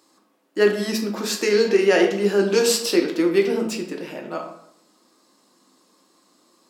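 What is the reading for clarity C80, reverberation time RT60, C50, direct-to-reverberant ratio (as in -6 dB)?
9.5 dB, 0.75 s, 7.0 dB, 1.5 dB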